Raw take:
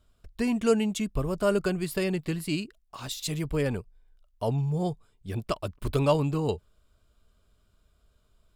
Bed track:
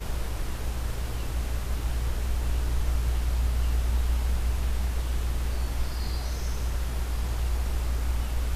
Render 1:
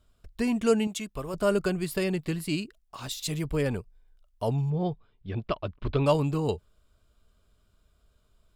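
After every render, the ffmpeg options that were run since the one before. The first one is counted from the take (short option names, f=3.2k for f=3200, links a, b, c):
-filter_complex "[0:a]asettb=1/sr,asplit=3[a][b][c];[a]atrim=end=0.874[d];[b]atrim=start=0.87:end=1.34,asetpts=PTS-STARTPTS,afade=t=in:d=0.004:c=qsin,afade=t=out:st=0.466:d=0.004:c=qsin,lowshelf=f=340:g=-11[e];[c]atrim=start=1.336[f];[d][e]acrossfade=d=0.004:c1=hsin:c2=qsin[g];[g][f]acrossfade=d=0.004:c1=qsin:c2=hsin,asettb=1/sr,asplit=3[h][i][j];[h]atrim=end=4.704[k];[i]atrim=start=4.7:end=6.06,asetpts=PTS-STARTPTS,afade=t=in:d=0.004:c=qsin,afade=t=out:st=1.356:d=0.004:c=qsin,lowpass=f=3.9k:w=0.5412,lowpass=f=3.9k:w=1.3066[l];[j]atrim=start=6.056[m];[k][l]acrossfade=d=0.004:c1=hsin:c2=qsin[n];[n][m]acrossfade=d=0.004:c1=qsin:c2=hsin"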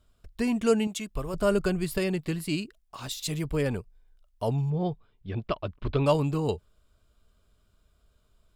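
-filter_complex "[0:a]asettb=1/sr,asplit=3[a][b][c];[a]atrim=end=1.104[d];[b]atrim=start=1.1:end=1.98,asetpts=PTS-STARTPTS,afade=t=in:d=0.004:c=qsin,afade=t=out:st=0.876:d=0.004:c=qsin,lowshelf=f=73:g=11[e];[c]atrim=start=1.976[f];[d][e]acrossfade=d=0.004:c1=hsin:c2=qsin[g];[g][f]acrossfade=d=0.004:c1=qsin:c2=hsin"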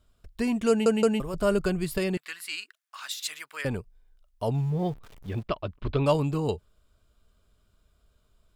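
-filter_complex "[0:a]asettb=1/sr,asplit=3[a][b][c];[a]atrim=end=2.174[d];[b]atrim=start=2.17:end=3.65,asetpts=PTS-STARTPTS,afade=t=in:d=0.004:c=qsin,afade=t=out:st=1.476:d=0.004:c=qsin,highpass=f=1.5k:t=q:w=2.1[e];[c]atrim=start=3.646[f];[d][e]acrossfade=d=0.004:c1=hsin:c2=qsin[g];[g][f]acrossfade=d=0.004:c1=qsin:c2=hsin,asettb=1/sr,asplit=3[h][i][j];[h]atrim=end=4.544[k];[i]atrim=start=4.54:end=5.43,asetpts=PTS-STARTPTS,afade=t=in:d=0.004:c=qsin,afade=t=out:st=0.886:d=0.004:c=qsin,aeval=exprs='val(0)+0.5*0.00596*sgn(val(0))':c=same[l];[j]atrim=start=5.426[m];[k][l]acrossfade=d=0.004:c1=hsin:c2=qsin[n];[n][m]acrossfade=d=0.004:c1=qsin:c2=hsin,asplit=4[o][p][q][r];[o]atrim=end=0.862[s];[p]atrim=start=0.688:end=0.862[t];[q]atrim=start=0.688:end=0.862[u];[r]atrim=start=1.198[v];[s][t]acrossfade=d=0.004:c1=hsin:c2=hsin[w];[w][u]acrossfade=d=0.004:c1=hsin:c2=hsin[x];[x][v]acrossfade=d=0.004:c1=hsin:c2=hsin"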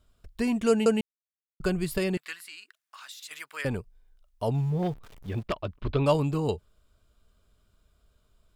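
-filter_complex "[0:a]asettb=1/sr,asplit=3[a][b][c];[a]atrim=end=2.344[d];[b]atrim=start=2.34:end=3.31,asetpts=PTS-STARTPTS,afade=t=in:d=0.004:c=qsin,afade=t=out:st=0.966:d=0.004:c=qsin,acompressor=threshold=-45dB:ratio=2.5:attack=3.2:release=140:knee=1:detection=peak[e];[c]atrim=start=3.306[f];[d][e]acrossfade=d=0.004:c1=hsin:c2=qsin[g];[g][f]acrossfade=d=0.004:c1=qsin:c2=hsin,asettb=1/sr,asplit=3[h][i][j];[h]atrim=end=4.654[k];[i]atrim=start=4.65:end=5.83,asetpts=PTS-STARTPTS,afade=t=in:d=0.004:c=qsin,afade=t=out:st=1.176:d=0.004:c=qsin,aeval=exprs='0.1*(abs(mod(val(0)/0.1+3,4)-2)-1)':c=same[l];[j]atrim=start=5.826[m];[k][l]acrossfade=d=0.004:c1=hsin:c2=qsin[n];[n][m]acrossfade=d=0.004:c1=qsin:c2=hsin,asplit=3[o][p][q];[o]atrim=end=1.01,asetpts=PTS-STARTPTS,afade=t=out:st=1.006:d=0.004:c=hsin[r];[p]atrim=start=1.01:end=1.6,asetpts=PTS-STARTPTS,volume=0[s];[q]atrim=start=1.6,asetpts=PTS-STARTPTS,afade=t=in:d=0.004:c=hsin[t];[r][s][t]concat=n=3:v=0:a=1"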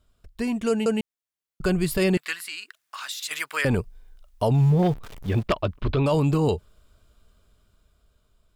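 -af "dynaudnorm=f=400:g=9:m=14dB,alimiter=limit=-13dB:level=0:latency=1:release=33"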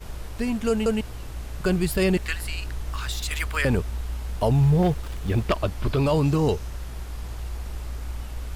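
-filter_complex "[1:a]volume=-5dB[a];[0:a][a]amix=inputs=2:normalize=0"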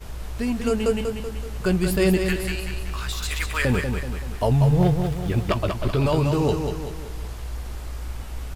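-filter_complex "[0:a]asplit=2[a][b];[b]adelay=16,volume=-11dB[c];[a][c]amix=inputs=2:normalize=0,aecho=1:1:190|380|570|760|950|1140:0.501|0.241|0.115|0.0554|0.0266|0.0128"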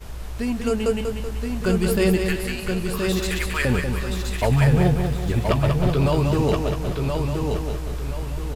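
-af "aecho=1:1:1024|2048|3072|4096:0.596|0.191|0.061|0.0195"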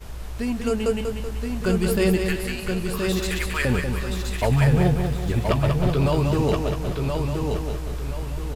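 -af "volume=-1dB"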